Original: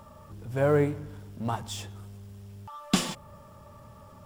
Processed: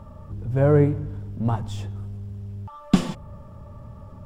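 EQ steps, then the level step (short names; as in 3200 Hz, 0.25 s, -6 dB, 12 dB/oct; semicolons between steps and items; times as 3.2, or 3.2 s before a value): tilt -3 dB/oct; +1.0 dB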